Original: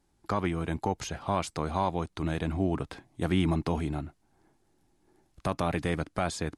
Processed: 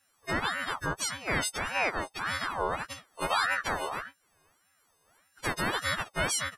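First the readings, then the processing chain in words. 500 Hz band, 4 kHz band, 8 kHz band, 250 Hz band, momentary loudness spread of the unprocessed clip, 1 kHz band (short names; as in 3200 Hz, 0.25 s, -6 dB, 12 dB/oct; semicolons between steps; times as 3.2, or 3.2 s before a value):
-3.5 dB, +7.5 dB, +9.0 dB, -10.0 dB, 7 LU, +1.5 dB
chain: frequency quantiser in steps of 4 st; ring modulator with a swept carrier 1200 Hz, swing 40%, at 1.7 Hz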